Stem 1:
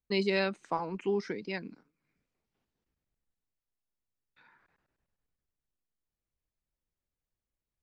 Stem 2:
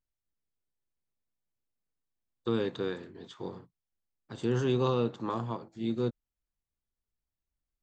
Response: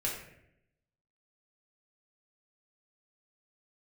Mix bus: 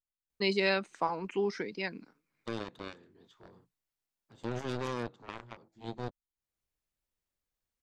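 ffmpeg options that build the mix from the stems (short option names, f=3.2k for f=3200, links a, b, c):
-filter_complex "[0:a]lowshelf=f=400:g=-6,adelay=300,volume=2.5dB[a];[1:a]aeval=exprs='0.15*(cos(1*acos(clip(val(0)/0.15,-1,1)))-cos(1*PI/2))+0.0335*(cos(7*acos(clip(val(0)/0.15,-1,1)))-cos(7*PI/2))':c=same,volume=-8dB,asplit=2[b][c];[c]apad=whole_len=358509[d];[a][d]sidechaincompress=threshold=-51dB:ratio=8:attack=16:release=346[e];[e][b]amix=inputs=2:normalize=0"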